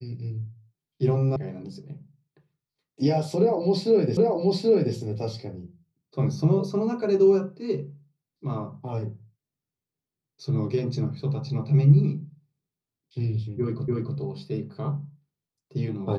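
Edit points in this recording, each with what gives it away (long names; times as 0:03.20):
0:01.36: cut off before it has died away
0:04.17: the same again, the last 0.78 s
0:13.88: the same again, the last 0.29 s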